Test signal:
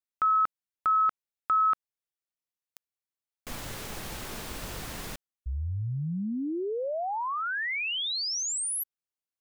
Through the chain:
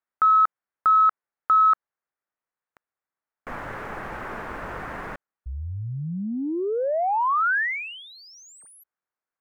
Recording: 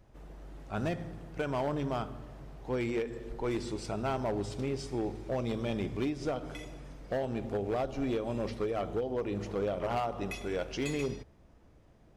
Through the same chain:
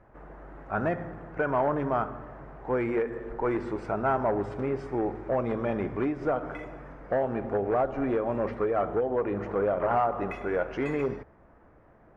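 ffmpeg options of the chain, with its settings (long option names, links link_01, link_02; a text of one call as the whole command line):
ffmpeg -i in.wav -filter_complex "[0:a]asplit=2[link_01][link_02];[link_02]highpass=frequency=720:poles=1,volume=10dB,asoftclip=type=tanh:threshold=-19.5dB[link_03];[link_01][link_03]amix=inputs=2:normalize=0,lowpass=frequency=1700:poles=1,volume=-6dB,highshelf=frequency=2500:width_type=q:width=1.5:gain=-14,volume=5dB" out.wav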